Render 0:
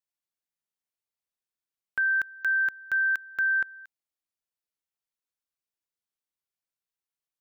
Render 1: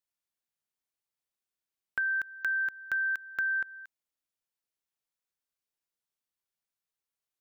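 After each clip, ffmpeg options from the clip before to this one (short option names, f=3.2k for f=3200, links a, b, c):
-af "acompressor=threshold=-28dB:ratio=6"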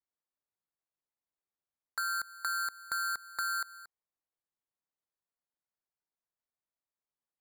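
-af "bandpass=f=2k:t=q:w=2.4:csg=0,acrusher=samples=15:mix=1:aa=0.000001"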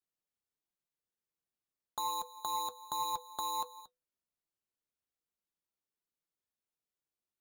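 -af "flanger=delay=5.5:depth=1.5:regen=64:speed=1.3:shape=triangular,aeval=exprs='0.0376*(cos(1*acos(clip(val(0)/0.0376,-1,1)))-cos(1*PI/2))+0.00133*(cos(6*acos(clip(val(0)/0.0376,-1,1)))-cos(6*PI/2))':c=same,afreqshift=-500,volume=2dB"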